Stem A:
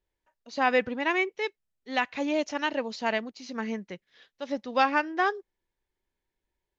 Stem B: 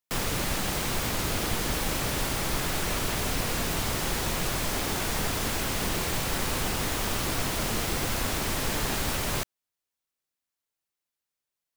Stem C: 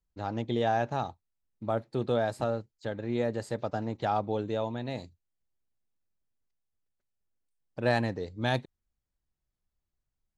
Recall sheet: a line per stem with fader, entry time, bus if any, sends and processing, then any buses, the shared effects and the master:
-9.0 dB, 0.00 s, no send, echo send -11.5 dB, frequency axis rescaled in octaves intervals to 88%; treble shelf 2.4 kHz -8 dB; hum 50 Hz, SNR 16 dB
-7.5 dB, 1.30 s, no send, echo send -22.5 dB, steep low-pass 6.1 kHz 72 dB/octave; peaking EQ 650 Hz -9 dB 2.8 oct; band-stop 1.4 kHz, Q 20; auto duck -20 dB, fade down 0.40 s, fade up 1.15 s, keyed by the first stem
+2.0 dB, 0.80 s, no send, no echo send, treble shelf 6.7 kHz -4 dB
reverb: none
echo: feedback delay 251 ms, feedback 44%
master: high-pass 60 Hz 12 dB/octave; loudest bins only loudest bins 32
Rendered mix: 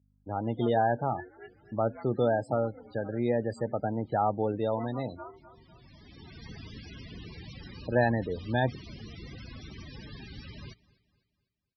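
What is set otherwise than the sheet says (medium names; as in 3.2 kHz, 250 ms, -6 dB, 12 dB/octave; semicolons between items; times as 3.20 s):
stem A -9.0 dB -> -16.5 dB; stem C: entry 0.80 s -> 0.10 s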